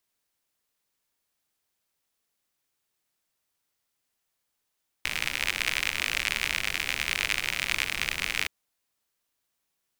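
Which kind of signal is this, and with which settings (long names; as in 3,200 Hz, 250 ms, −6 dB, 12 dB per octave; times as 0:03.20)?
rain-like ticks over hiss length 3.42 s, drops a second 73, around 2,300 Hz, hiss −12 dB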